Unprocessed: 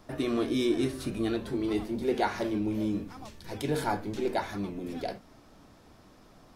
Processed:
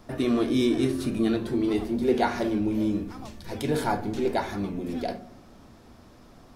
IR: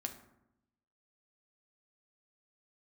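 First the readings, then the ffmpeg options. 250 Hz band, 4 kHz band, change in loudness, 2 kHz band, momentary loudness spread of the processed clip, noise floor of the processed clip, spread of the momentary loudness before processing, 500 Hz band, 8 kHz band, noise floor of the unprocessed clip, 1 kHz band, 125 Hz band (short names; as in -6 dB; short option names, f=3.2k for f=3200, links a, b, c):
+5.0 dB, +2.5 dB, +4.5 dB, +2.5 dB, 9 LU, -52 dBFS, 9 LU, +4.0 dB, +2.5 dB, -57 dBFS, +3.5 dB, +4.0 dB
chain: -filter_complex "[0:a]asplit=2[a][b];[1:a]atrim=start_sample=2205,lowshelf=f=430:g=5.5[c];[b][c]afir=irnorm=-1:irlink=0,volume=-1dB[d];[a][d]amix=inputs=2:normalize=0,volume=-2dB"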